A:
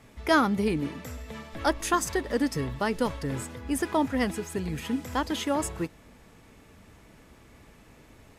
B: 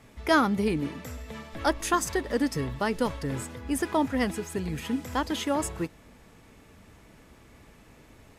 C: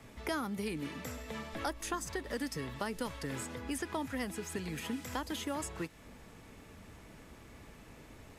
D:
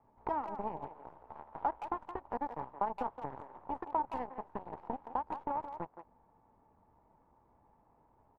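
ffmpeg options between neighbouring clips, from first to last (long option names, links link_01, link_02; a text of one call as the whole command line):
ffmpeg -i in.wav -af anull out.wav
ffmpeg -i in.wav -filter_complex "[0:a]acrossover=split=180|1200|7800[link_01][link_02][link_03][link_04];[link_01]acompressor=threshold=-48dB:ratio=4[link_05];[link_02]acompressor=threshold=-39dB:ratio=4[link_06];[link_03]acompressor=threshold=-43dB:ratio=4[link_07];[link_04]acompressor=threshold=-49dB:ratio=4[link_08];[link_05][link_06][link_07][link_08]amix=inputs=4:normalize=0" out.wav
ffmpeg -i in.wav -filter_complex "[0:a]aeval=exprs='0.0794*(cos(1*acos(clip(val(0)/0.0794,-1,1)))-cos(1*PI/2))+0.00224*(cos(3*acos(clip(val(0)/0.0794,-1,1)))-cos(3*PI/2))+0.01*(cos(4*acos(clip(val(0)/0.0794,-1,1)))-cos(4*PI/2))+0.0126*(cos(7*acos(clip(val(0)/0.0794,-1,1)))-cos(7*PI/2))':channel_layout=same,lowpass=frequency=900:width_type=q:width=6.2,asplit=2[link_01][link_02];[link_02]adelay=170,highpass=300,lowpass=3400,asoftclip=type=hard:threshold=-25dB,volume=-9dB[link_03];[link_01][link_03]amix=inputs=2:normalize=0,volume=-3dB" out.wav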